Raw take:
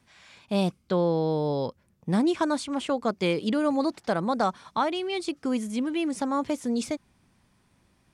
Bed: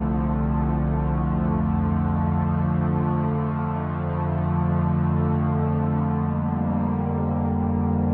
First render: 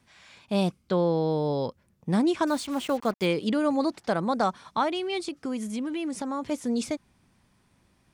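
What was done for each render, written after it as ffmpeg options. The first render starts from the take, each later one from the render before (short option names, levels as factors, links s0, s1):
-filter_complex "[0:a]asettb=1/sr,asplit=3[s0][s1][s2];[s0]atrim=end=2.474[s3];[s1]atrim=start=2.47:end=3.26,asetpts=PTS-STARTPTS,afade=t=in:d=0.004:c=qsin,afade=t=out:st=0.786:d=0.004:c=qsin,acrusher=bits=6:mix=0:aa=0.5[s4];[s2]atrim=start=3.256[s5];[s3][s4]acrossfade=d=0.004:c1=hsin:c2=qsin[s6];[s6][s5]acrossfade=d=0.004:c1=qsin:c2=hsin,asplit=3[s7][s8][s9];[s7]afade=t=out:st=5.26:d=0.02[s10];[s8]acompressor=threshold=0.0398:ratio=3:attack=3.2:release=140:knee=1:detection=peak,afade=t=in:st=5.26:d=0.02,afade=t=out:st=6.5:d=0.02[s11];[s9]afade=t=in:st=6.5:d=0.02[s12];[s10][s11][s12]amix=inputs=3:normalize=0"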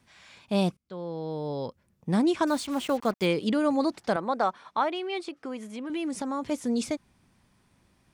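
-filter_complex "[0:a]asettb=1/sr,asplit=3[s0][s1][s2];[s0]atrim=end=4.164[s3];[s1]atrim=start=4.16:end=5.9,asetpts=PTS-STARTPTS,afade=t=in:d=0.004:c=qsin,afade=t=out:st=1.736:d=0.004:c=qsin,bass=f=250:g=-13,treble=f=4000:g=-10[s4];[s2]atrim=start=5.896[s5];[s3][s4]acrossfade=d=0.004:c1=hsin:c2=qsin[s6];[s6][s5]acrossfade=d=0.004:c1=qsin:c2=hsin,asplit=2[s7][s8];[s7]atrim=end=0.77,asetpts=PTS-STARTPTS,afade=t=out:st=0.766:d=0.004:c=hsin:silence=0.0841395[s9];[s8]atrim=start=0.77,asetpts=PTS-STARTPTS,afade=t=in:d=1.49:silence=0.0841395[s10];[s9][s10]concat=n=2:v=0:a=1"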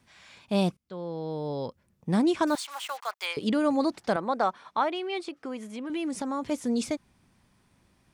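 -filter_complex "[0:a]asettb=1/sr,asplit=3[s0][s1][s2];[s0]atrim=end=2.554[s3];[s1]atrim=start=2.55:end=3.37,asetpts=PTS-STARTPTS,afade=t=in:d=0.004:c=qsin,afade=t=out:st=0.816:d=0.004:c=qsin,highpass=f=830:w=0.5412,highpass=f=830:w=1.3066[s4];[s2]atrim=start=3.366[s5];[s3][s4]acrossfade=d=0.004:c1=hsin:c2=qsin[s6];[s6][s5]acrossfade=d=0.004:c1=qsin:c2=hsin"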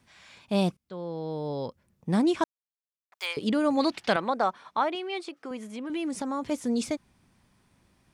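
-filter_complex "[0:a]asettb=1/sr,asplit=3[s0][s1][s2];[s0]atrim=end=3.774[s3];[s1]atrim=start=3.77:end=4.3,asetpts=PTS-STARTPTS,afade=t=in:d=0.004:c=qsin,afade=t=out:st=0.526:d=0.004:c=qsin,equalizer=f=2800:w=0.92:g=13[s4];[s2]atrim=start=4.296[s5];[s3][s4]acrossfade=d=0.004:c1=hsin:c2=qsin[s6];[s6][s5]acrossfade=d=0.004:c1=qsin:c2=hsin,asettb=1/sr,asplit=3[s7][s8][s9];[s7]atrim=end=4.954[s10];[s8]atrim=start=4.95:end=5.51,asetpts=PTS-STARTPTS,afade=t=in:d=0.004:c=qsin,afade=t=out:st=0.556:d=0.004:c=qsin,highpass=f=280:p=1[s11];[s9]atrim=start=5.506[s12];[s10][s11]acrossfade=d=0.004:c1=hsin:c2=qsin[s13];[s13][s12]acrossfade=d=0.004:c1=qsin:c2=hsin,asplit=3[s14][s15][s16];[s14]atrim=end=2.44,asetpts=PTS-STARTPTS,afade=t=out:st=2.436:d=0.004:c=hsin[s17];[s15]atrim=start=2.44:end=3.12,asetpts=PTS-STARTPTS,volume=0[s18];[s16]atrim=start=3.12,asetpts=PTS-STARTPTS,afade=t=in:d=0.004:c=hsin[s19];[s17][s18][s19]concat=n=3:v=0:a=1"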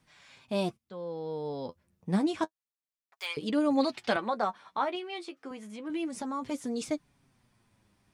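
-af "flanger=delay=6.3:depth=5.6:regen=33:speed=0.29:shape=triangular"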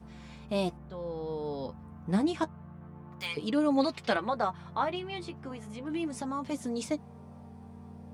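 -filter_complex "[1:a]volume=0.0531[s0];[0:a][s0]amix=inputs=2:normalize=0"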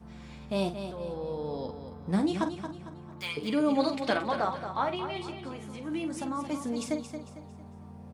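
-filter_complex "[0:a]asplit=2[s0][s1];[s1]adelay=46,volume=0.316[s2];[s0][s2]amix=inputs=2:normalize=0,aecho=1:1:226|452|678|904:0.355|0.135|0.0512|0.0195"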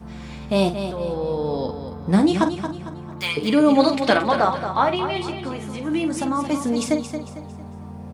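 -af "volume=3.35"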